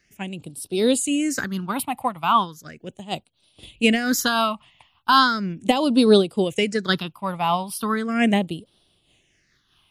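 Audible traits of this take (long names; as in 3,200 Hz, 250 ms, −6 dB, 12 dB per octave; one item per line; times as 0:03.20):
phaser sweep stages 6, 0.37 Hz, lowest notch 410–1,900 Hz
amplitude modulation by smooth noise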